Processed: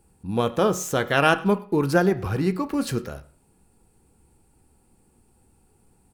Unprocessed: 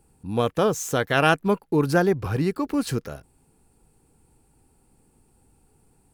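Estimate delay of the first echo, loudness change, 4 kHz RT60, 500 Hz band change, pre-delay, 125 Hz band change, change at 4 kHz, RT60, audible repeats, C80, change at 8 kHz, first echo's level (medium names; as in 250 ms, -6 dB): 103 ms, +0.5 dB, 0.40 s, 0.0 dB, 5 ms, -0.5 dB, +0.5 dB, 0.45 s, 1, 18.5 dB, 0.0 dB, -22.5 dB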